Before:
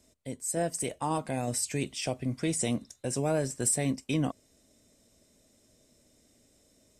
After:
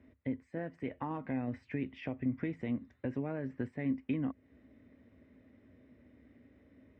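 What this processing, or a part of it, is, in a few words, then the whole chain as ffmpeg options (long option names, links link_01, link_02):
bass amplifier: -af "acompressor=threshold=-39dB:ratio=4,highpass=64,equalizer=frequency=67:width_type=q:width=4:gain=10,equalizer=frequency=98:width_type=q:width=4:gain=6,equalizer=frequency=260:width_type=q:width=4:gain=9,equalizer=frequency=680:width_type=q:width=4:gain=-5,equalizer=frequency=1900:width_type=q:width=4:gain=7,lowpass=frequency=2300:width=0.5412,lowpass=frequency=2300:width=1.3066,volume=2dB"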